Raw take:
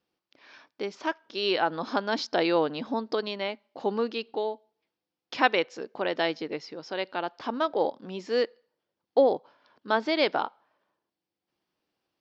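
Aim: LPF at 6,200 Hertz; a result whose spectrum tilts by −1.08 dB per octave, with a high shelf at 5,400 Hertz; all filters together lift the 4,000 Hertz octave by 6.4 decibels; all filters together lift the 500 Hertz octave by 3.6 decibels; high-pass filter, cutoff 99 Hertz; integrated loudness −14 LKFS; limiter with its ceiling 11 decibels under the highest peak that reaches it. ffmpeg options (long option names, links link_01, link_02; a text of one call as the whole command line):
ffmpeg -i in.wav -af "highpass=99,lowpass=6200,equalizer=frequency=500:width_type=o:gain=4,equalizer=frequency=4000:width_type=o:gain=7,highshelf=frequency=5400:gain=4.5,volume=14.5dB,alimiter=limit=-1dB:level=0:latency=1" out.wav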